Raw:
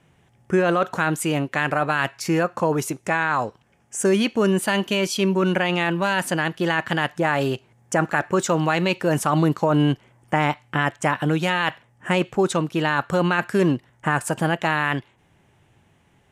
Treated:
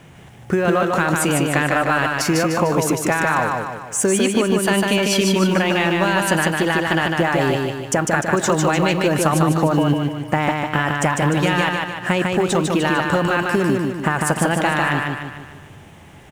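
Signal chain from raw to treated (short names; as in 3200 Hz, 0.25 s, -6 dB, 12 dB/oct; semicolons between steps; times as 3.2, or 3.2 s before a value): G.711 law mismatch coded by mu; compressor, threshold -22 dBFS, peak gain reduction 8 dB; feedback echo 0.15 s, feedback 49%, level -3 dB; gain +6.5 dB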